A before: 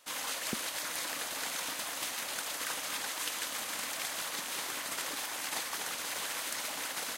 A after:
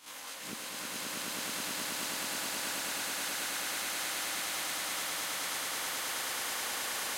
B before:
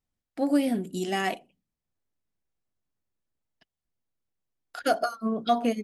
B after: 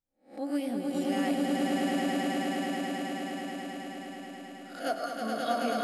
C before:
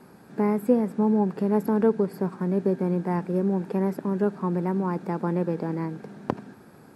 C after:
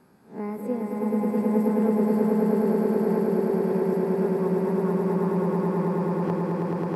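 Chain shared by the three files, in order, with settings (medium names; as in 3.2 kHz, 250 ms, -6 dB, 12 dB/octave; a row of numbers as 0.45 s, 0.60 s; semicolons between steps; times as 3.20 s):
reverse spectral sustain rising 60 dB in 0.32 s; on a send: echo with a slow build-up 107 ms, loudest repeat 8, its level -3 dB; on the sum: trim -9 dB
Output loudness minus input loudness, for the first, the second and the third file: +1.0 LU, -4.0 LU, +1.5 LU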